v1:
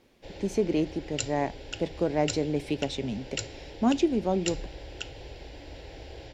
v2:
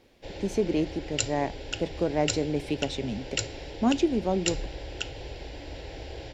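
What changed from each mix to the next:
background +4.0 dB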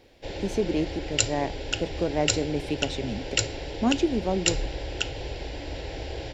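background +5.0 dB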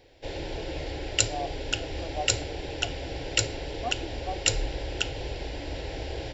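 speech: add vowel filter a

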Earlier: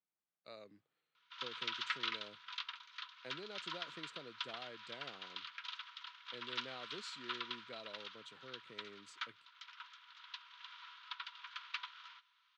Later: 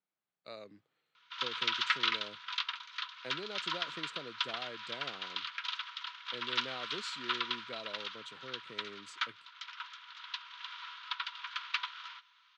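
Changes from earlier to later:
speech +6.0 dB; background +8.5 dB

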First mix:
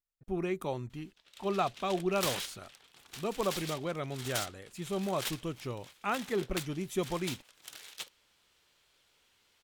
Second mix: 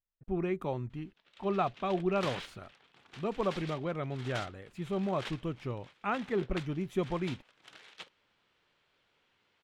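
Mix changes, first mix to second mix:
background: add band-pass 110–7400 Hz; master: add tone controls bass +3 dB, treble -15 dB

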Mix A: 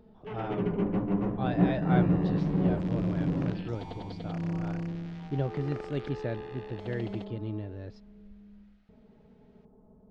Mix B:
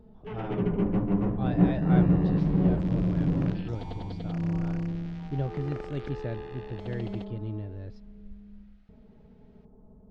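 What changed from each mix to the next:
speech -3.5 dB; master: add bass shelf 120 Hz +10 dB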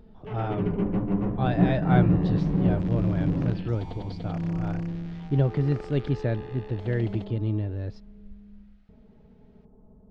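speech +8.0 dB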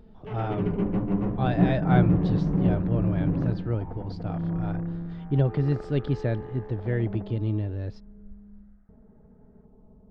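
second sound: add steep low-pass 1.7 kHz 36 dB/octave

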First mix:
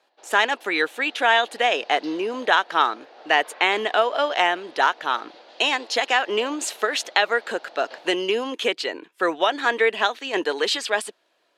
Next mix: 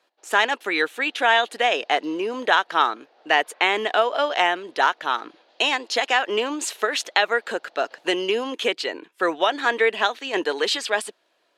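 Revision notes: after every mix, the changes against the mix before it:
background -11.0 dB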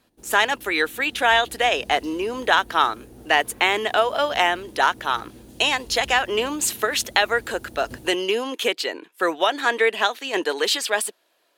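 background: remove Chebyshev band-pass 620–4500 Hz, order 3; master: remove distance through air 60 m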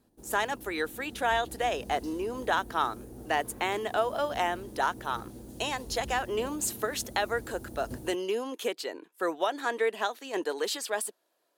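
speech -6.5 dB; master: add peaking EQ 2.7 kHz -8.5 dB 1.7 oct

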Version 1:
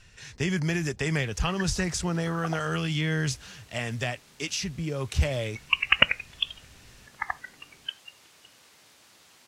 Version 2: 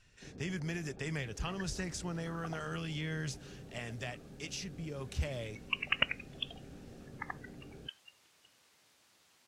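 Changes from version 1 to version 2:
speech -11.0 dB; first sound +11.5 dB; second sound -11.0 dB

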